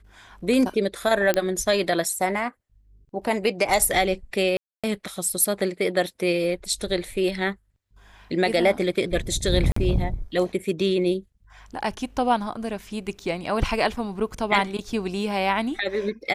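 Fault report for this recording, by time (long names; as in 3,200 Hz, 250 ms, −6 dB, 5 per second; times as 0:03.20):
0:01.34: click −7 dBFS
0:04.57–0:04.84: drop-out 266 ms
0:09.72–0:09.76: drop-out 44 ms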